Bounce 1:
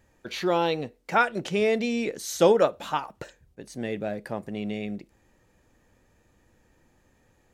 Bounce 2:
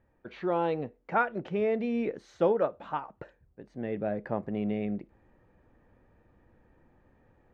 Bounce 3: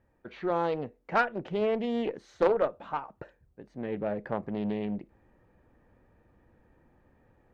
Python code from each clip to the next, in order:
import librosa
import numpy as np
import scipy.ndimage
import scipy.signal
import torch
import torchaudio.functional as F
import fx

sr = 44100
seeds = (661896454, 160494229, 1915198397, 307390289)

y1 = scipy.signal.sosfilt(scipy.signal.butter(2, 1600.0, 'lowpass', fs=sr, output='sos'), x)
y1 = fx.rider(y1, sr, range_db=4, speed_s=0.5)
y1 = y1 * librosa.db_to_amplitude(-3.0)
y2 = fx.cheby_harmonics(y1, sr, harmonics=(3, 6, 8), levels_db=(-20, -28, -43), full_scale_db=-12.5)
y2 = fx.doppler_dist(y2, sr, depth_ms=0.29)
y2 = y2 * librosa.db_to_amplitude(3.0)